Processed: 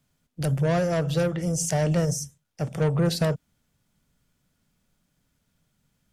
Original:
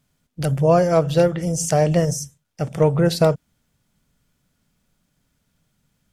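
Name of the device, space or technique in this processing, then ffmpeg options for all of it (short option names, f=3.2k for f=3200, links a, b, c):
one-band saturation: -filter_complex "[0:a]acrossover=split=220|5000[a][b][c];[b]asoftclip=type=tanh:threshold=-19.5dB[d];[a][d][c]amix=inputs=3:normalize=0,volume=-3dB"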